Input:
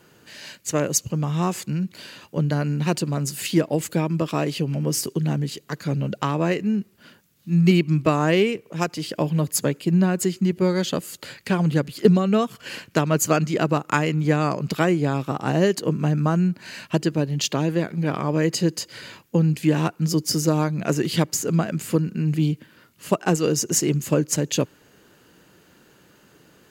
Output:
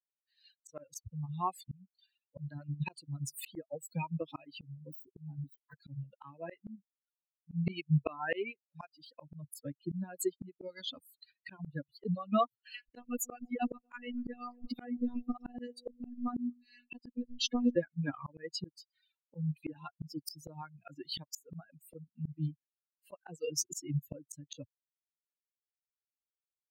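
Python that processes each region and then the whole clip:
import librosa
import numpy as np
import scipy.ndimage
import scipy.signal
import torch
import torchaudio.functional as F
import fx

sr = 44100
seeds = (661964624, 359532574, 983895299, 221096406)

y = fx.chain(x, sr, fx.dead_time(dead_ms=0.075),
    fx.peak_eq(hz=5700.0, db=-7.0, octaves=2.7), at=(4.61, 5.75))
y = fx.chain(y, sr, fx.robotise(hz=243.0),
    fx.echo_alternate(ms=119, hz=850.0, feedback_pct=58, wet_db=-10),
    fx.band_squash(depth_pct=40), at=(12.74, 17.76))
y = fx.bin_expand(y, sr, power=3.0)
y = fx.dereverb_blind(y, sr, rt60_s=0.96)
y = fx.auto_swell(y, sr, attack_ms=638.0)
y = F.gain(torch.from_numpy(y), 6.5).numpy()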